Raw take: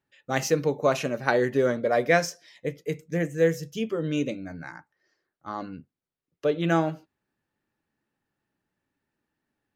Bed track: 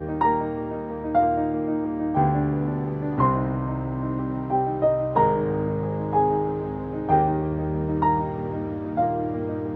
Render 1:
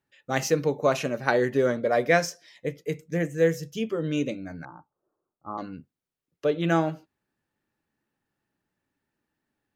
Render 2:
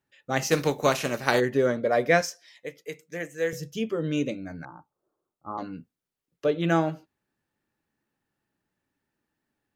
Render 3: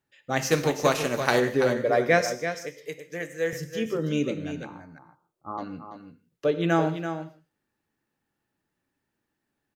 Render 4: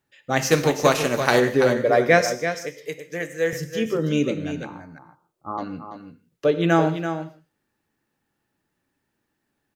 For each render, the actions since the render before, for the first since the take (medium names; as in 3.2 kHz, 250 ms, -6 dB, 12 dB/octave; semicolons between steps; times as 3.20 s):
4.65–5.58 s: steep low-pass 1.3 kHz 72 dB/octave
0.50–1.39 s: spectral contrast reduction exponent 0.66; 2.21–3.53 s: high-pass 850 Hz 6 dB/octave; 5.50–6.48 s: doubling 17 ms -9 dB
delay 334 ms -9 dB; gated-style reverb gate 180 ms flat, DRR 12 dB
trim +4.5 dB; peak limiter -2 dBFS, peak gain reduction 1 dB